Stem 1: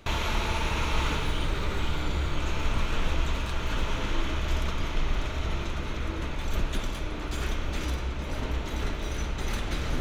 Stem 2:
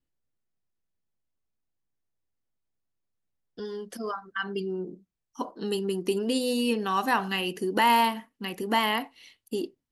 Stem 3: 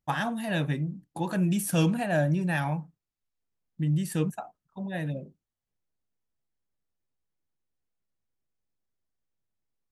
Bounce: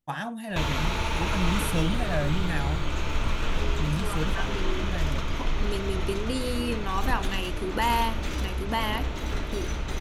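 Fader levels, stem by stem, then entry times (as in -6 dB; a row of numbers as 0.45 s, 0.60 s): +0.5 dB, -4.0 dB, -3.5 dB; 0.50 s, 0.00 s, 0.00 s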